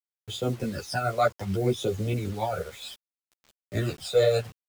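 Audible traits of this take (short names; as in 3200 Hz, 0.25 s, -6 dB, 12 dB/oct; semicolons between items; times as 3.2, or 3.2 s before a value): phasing stages 12, 0.65 Hz, lowest notch 280–1800 Hz; tremolo triangle 6.7 Hz, depth 55%; a quantiser's noise floor 8-bit, dither none; a shimmering, thickened sound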